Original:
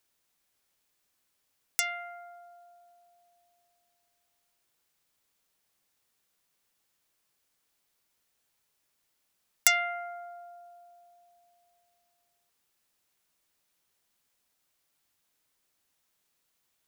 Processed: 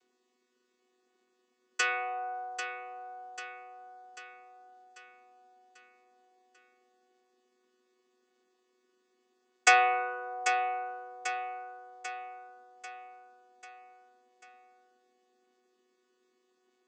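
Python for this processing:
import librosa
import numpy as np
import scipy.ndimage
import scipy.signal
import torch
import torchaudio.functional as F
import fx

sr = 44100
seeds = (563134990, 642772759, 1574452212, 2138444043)

p1 = fx.chord_vocoder(x, sr, chord='bare fifth', root=59)
p2 = fx.peak_eq(p1, sr, hz=370.0, db=6.5, octaves=0.85)
p3 = p2 + fx.echo_feedback(p2, sr, ms=792, feedback_pct=53, wet_db=-9.0, dry=0)
y = F.gain(torch.from_numpy(p3), 4.0).numpy()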